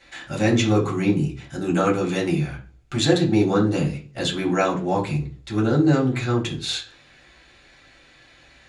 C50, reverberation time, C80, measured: 11.0 dB, 0.40 s, 16.5 dB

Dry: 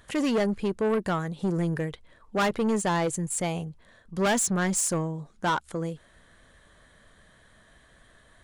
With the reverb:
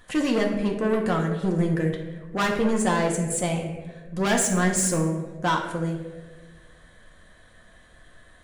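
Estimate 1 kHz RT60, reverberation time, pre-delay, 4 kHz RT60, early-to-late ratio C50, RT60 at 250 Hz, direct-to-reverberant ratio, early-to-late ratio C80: 1.1 s, 1.4 s, 3 ms, 0.70 s, 5.5 dB, 1.6 s, -0.5 dB, 8.0 dB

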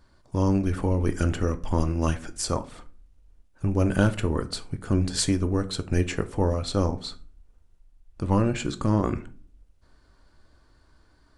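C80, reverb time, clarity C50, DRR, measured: 23.0 dB, 0.45 s, 17.5 dB, 9.5 dB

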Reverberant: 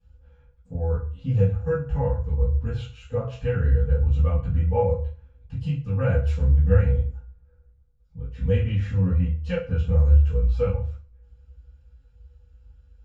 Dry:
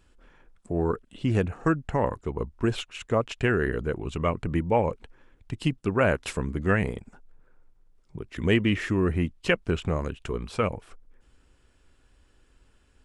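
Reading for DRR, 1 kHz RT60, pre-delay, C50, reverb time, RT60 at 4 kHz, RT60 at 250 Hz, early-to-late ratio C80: -18.5 dB, 0.45 s, 3 ms, 6.5 dB, 0.40 s, 0.40 s, 0.55 s, 12.0 dB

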